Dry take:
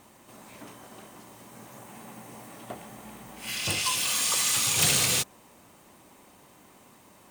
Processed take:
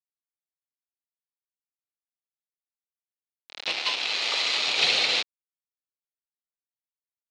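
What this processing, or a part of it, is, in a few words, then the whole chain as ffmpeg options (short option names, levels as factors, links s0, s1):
hand-held game console: -af "acrusher=bits=3:mix=0:aa=0.000001,highpass=480,equalizer=f=1100:t=q:w=4:g=-6,equalizer=f=1600:t=q:w=4:g=-5,equalizer=f=2400:t=q:w=4:g=3,equalizer=f=4100:t=q:w=4:g=6,lowpass=f=4400:w=0.5412,lowpass=f=4400:w=1.3066,volume=1.41"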